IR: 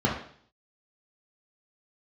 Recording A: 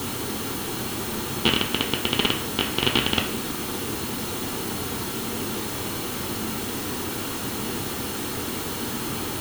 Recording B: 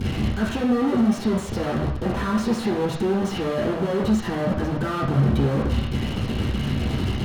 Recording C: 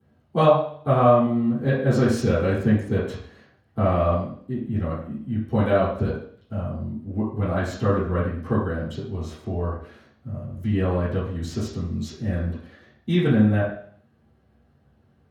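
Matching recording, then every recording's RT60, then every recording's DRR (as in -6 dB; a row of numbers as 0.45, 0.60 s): B; 0.55, 0.55, 0.55 s; 4.0, -3.0, -12.5 dB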